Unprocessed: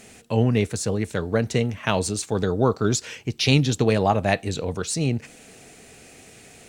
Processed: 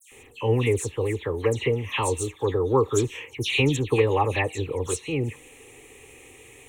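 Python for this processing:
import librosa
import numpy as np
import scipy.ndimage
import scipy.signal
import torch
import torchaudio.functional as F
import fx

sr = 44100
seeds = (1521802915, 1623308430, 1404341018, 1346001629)

y = fx.fixed_phaser(x, sr, hz=990.0, stages=8)
y = fx.dispersion(y, sr, late='lows', ms=119.0, hz=2900.0)
y = y * librosa.db_to_amplitude(2.0)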